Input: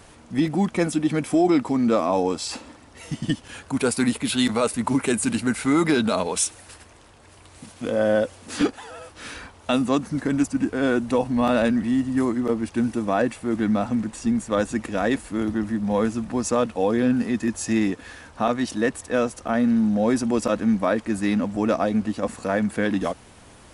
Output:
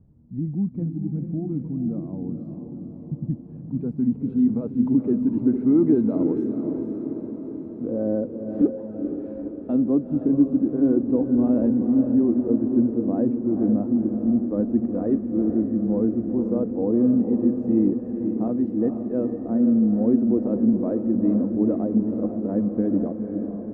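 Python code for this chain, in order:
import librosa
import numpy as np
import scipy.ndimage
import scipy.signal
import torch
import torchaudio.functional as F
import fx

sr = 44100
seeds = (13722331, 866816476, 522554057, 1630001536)

y = fx.filter_sweep_lowpass(x, sr, from_hz=160.0, to_hz=340.0, start_s=3.11, end_s=5.51, q=1.6)
y = fx.low_shelf(y, sr, hz=100.0, db=-6.5)
y = fx.echo_diffused(y, sr, ms=478, feedback_pct=63, wet_db=-6.5)
y = y * librosa.db_to_amplitude(-1.0)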